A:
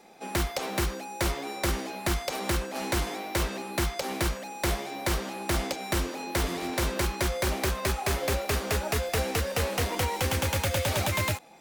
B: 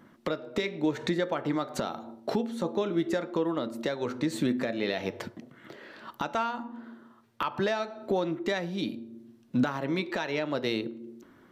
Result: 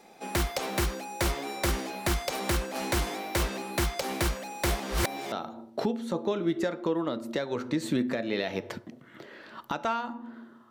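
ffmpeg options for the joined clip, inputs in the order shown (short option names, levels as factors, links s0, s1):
-filter_complex "[0:a]apad=whole_dur=10.7,atrim=end=10.7,asplit=2[s0][s1];[s0]atrim=end=4.802[s2];[s1]atrim=start=4.798:end=5.322,asetpts=PTS-STARTPTS,areverse[s3];[1:a]atrim=start=1.818:end=7.2[s4];[s2][s3]acrossfade=d=0.004:c1=hsin:c2=hsin[s5];[s5][s4]acrossfade=d=0.004:c1=hsin:c2=hsin"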